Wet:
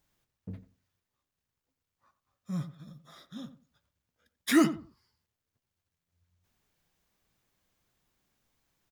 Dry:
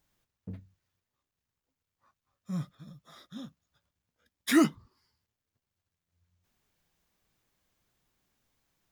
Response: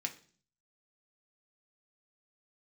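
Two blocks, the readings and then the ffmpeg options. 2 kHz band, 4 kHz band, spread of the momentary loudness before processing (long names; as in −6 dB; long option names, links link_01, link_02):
0.0 dB, 0.0 dB, 22 LU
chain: -filter_complex "[0:a]asplit=2[link_01][link_02];[link_02]adelay=89,lowpass=frequency=1200:poles=1,volume=-12dB,asplit=2[link_03][link_04];[link_04]adelay=89,lowpass=frequency=1200:poles=1,volume=0.22,asplit=2[link_05][link_06];[link_06]adelay=89,lowpass=frequency=1200:poles=1,volume=0.22[link_07];[link_01][link_03][link_05][link_07]amix=inputs=4:normalize=0"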